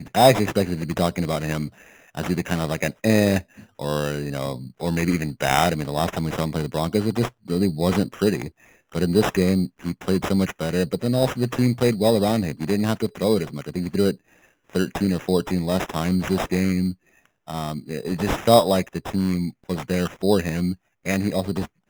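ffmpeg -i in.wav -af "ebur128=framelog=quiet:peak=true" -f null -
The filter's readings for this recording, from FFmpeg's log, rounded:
Integrated loudness:
  I:         -22.9 LUFS
  Threshold: -33.2 LUFS
Loudness range:
  LRA:         2.5 LU
  Threshold: -43.3 LUFS
  LRA low:   -24.5 LUFS
  LRA high:  -22.0 LUFS
True peak:
  Peak:       -1.4 dBFS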